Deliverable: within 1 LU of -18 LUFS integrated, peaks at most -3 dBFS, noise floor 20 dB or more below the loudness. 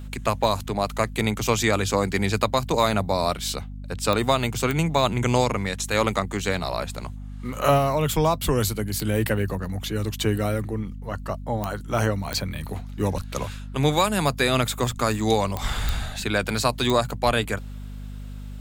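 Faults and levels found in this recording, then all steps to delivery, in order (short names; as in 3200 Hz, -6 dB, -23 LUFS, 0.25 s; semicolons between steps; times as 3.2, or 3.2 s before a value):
clicks 8; hum 50 Hz; harmonics up to 250 Hz; hum level -33 dBFS; loudness -24.5 LUFS; peak -6.5 dBFS; loudness target -18.0 LUFS
-> de-click; de-hum 50 Hz, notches 5; gain +6.5 dB; limiter -3 dBFS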